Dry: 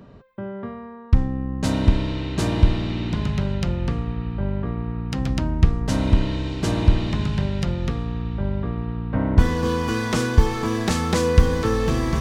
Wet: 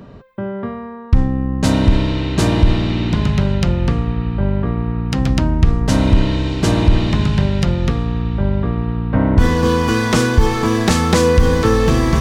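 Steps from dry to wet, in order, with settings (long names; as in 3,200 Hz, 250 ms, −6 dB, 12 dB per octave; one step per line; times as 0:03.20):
boost into a limiter +8.5 dB
level −1 dB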